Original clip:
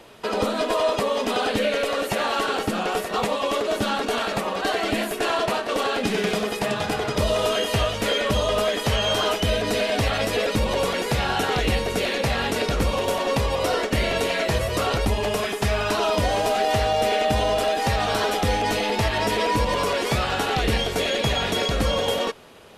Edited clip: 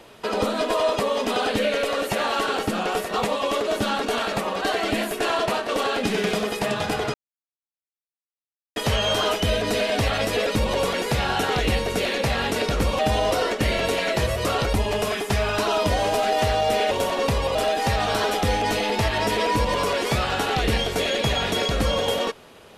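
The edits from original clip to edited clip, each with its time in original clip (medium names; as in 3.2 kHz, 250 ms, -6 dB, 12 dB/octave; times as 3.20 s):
7.14–8.76 s: mute
12.99–13.63 s: swap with 17.23–17.55 s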